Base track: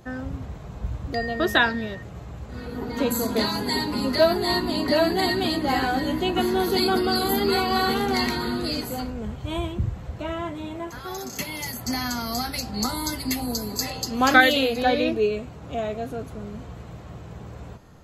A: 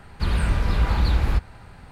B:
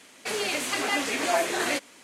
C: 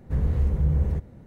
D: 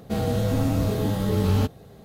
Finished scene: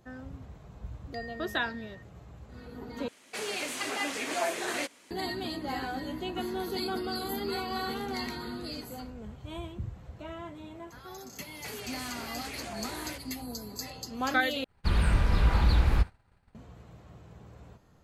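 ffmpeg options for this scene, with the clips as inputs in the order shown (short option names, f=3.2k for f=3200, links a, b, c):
-filter_complex "[2:a]asplit=2[a][b];[0:a]volume=-11.5dB[c];[b]acompressor=threshold=-30dB:ratio=6:attack=3.2:release=140:knee=1:detection=peak[d];[1:a]agate=range=-33dB:threshold=-32dB:ratio=3:release=100:detection=peak[e];[c]asplit=3[f][g][h];[f]atrim=end=3.084[i];[a]atrim=end=2.03,asetpts=PTS-STARTPTS,volume=-6dB[j];[g]atrim=start=5.106:end=14.644[k];[e]atrim=end=1.91,asetpts=PTS-STARTPTS,volume=-3dB[l];[h]atrim=start=16.546[m];[d]atrim=end=2.03,asetpts=PTS-STARTPTS,volume=-8dB,afade=t=in:d=0.004:c=hsin,afade=t=out:st=2.026:d=0.004:c=hsin,adelay=11390[n];[i][j]acrossfade=d=0.004:c1=hsin:c2=hsin[o];[o][k]acrossfade=d=0.004:c1=hsin:c2=hsin[p];[p][l]acrossfade=d=0.004:c1=hsin:c2=hsin[q];[q][m]acrossfade=d=0.004:c1=hsin:c2=hsin[r];[r][n]amix=inputs=2:normalize=0"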